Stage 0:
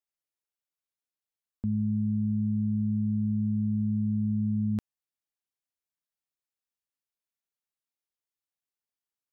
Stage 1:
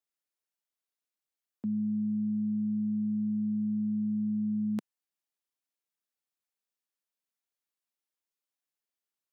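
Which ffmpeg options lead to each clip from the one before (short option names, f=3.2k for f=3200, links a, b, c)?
-af "highpass=f=180:w=0.5412,highpass=f=180:w=1.3066"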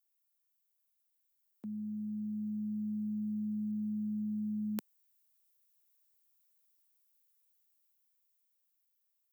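-af "aemphasis=mode=production:type=bsi,dynaudnorm=f=480:g=9:m=7dB,volume=-6.5dB"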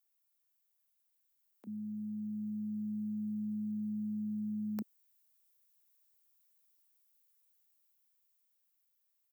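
-filter_complex "[0:a]acrossover=split=330[a][b];[a]adelay=30[c];[c][b]amix=inputs=2:normalize=0,asoftclip=type=hard:threshold=-24.5dB,volume=1dB"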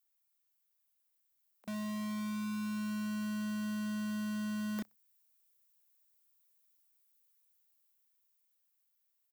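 -filter_complex "[0:a]aecho=1:1:62|124:0.0794|0.027,acrossover=split=120|540|3800[a][b][c][d];[b]acrusher=bits=6:mix=0:aa=0.000001[e];[a][e][c][d]amix=inputs=4:normalize=0"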